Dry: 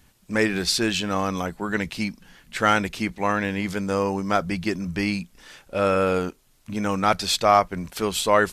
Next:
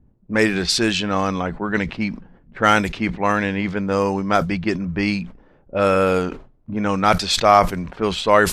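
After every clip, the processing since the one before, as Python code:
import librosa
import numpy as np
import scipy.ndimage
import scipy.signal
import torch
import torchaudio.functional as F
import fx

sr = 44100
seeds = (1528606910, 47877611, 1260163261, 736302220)

y = fx.env_lowpass(x, sr, base_hz=380.0, full_db=-17.5)
y = fx.sustainer(y, sr, db_per_s=120.0)
y = y * librosa.db_to_amplitude(4.0)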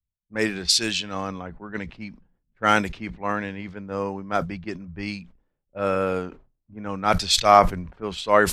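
y = fx.band_widen(x, sr, depth_pct=100)
y = y * librosa.db_to_amplitude(-7.5)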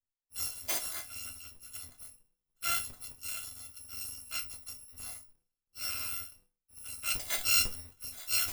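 y = fx.bit_reversed(x, sr, seeds[0], block=256)
y = fx.resonator_bank(y, sr, root=40, chord='minor', decay_s=0.21)
y = y * librosa.db_to_amplitude(-3.0)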